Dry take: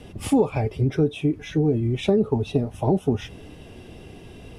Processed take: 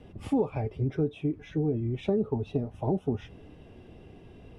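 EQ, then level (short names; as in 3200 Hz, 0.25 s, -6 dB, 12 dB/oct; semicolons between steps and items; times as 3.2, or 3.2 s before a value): LPF 1800 Hz 6 dB/oct; -7.0 dB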